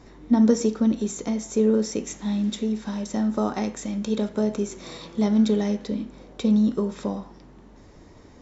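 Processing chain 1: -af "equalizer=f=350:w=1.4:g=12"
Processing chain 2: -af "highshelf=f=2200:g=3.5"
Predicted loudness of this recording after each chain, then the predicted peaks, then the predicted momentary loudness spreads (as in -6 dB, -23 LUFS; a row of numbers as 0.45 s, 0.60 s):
-19.0 LUFS, -24.0 LUFS; -1.5 dBFS, -8.0 dBFS; 11 LU, 11 LU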